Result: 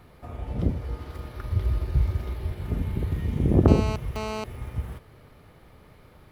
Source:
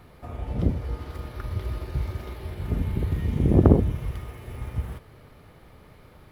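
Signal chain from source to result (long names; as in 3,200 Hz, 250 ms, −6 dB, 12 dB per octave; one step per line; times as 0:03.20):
0:01.52–0:02.52: low-shelf EQ 150 Hz +9 dB
0:03.68–0:04.44: phone interference −30 dBFS
level −1.5 dB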